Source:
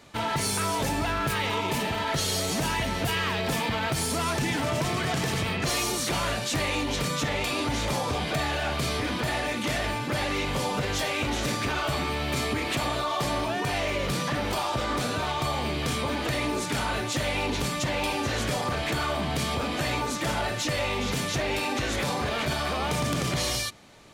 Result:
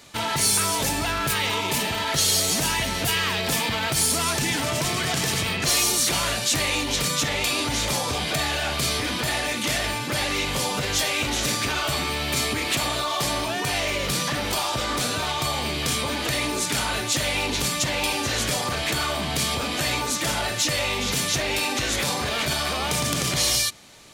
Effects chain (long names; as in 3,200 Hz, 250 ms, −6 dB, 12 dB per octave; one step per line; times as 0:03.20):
high-shelf EQ 2,800 Hz +11 dB